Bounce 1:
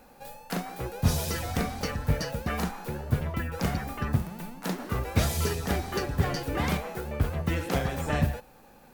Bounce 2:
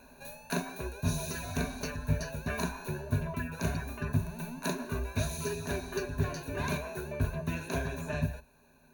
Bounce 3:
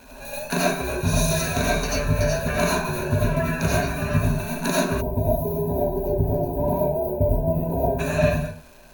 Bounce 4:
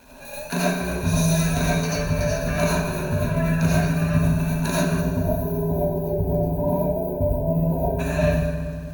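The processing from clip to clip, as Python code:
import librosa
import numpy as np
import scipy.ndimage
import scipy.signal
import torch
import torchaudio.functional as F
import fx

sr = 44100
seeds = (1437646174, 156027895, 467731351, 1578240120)

y1 = fx.ripple_eq(x, sr, per_octave=1.5, db=16)
y1 = fx.rider(y1, sr, range_db=10, speed_s=0.5)
y1 = F.gain(torch.from_numpy(y1), -7.5).numpy()
y2 = fx.rev_freeverb(y1, sr, rt60_s=0.41, hf_ratio=0.55, predelay_ms=50, drr_db=-6.0)
y2 = fx.dmg_crackle(y2, sr, seeds[0], per_s=600.0, level_db=-49.0)
y2 = fx.spec_box(y2, sr, start_s=5.01, length_s=2.98, low_hz=1000.0, high_hz=11000.0, gain_db=-29)
y2 = F.gain(torch.from_numpy(y2), 7.0).numpy()
y3 = fx.rev_fdn(y2, sr, rt60_s=2.3, lf_ratio=1.45, hf_ratio=0.75, size_ms=34.0, drr_db=4.5)
y3 = F.gain(torch.from_numpy(y3), -3.0).numpy()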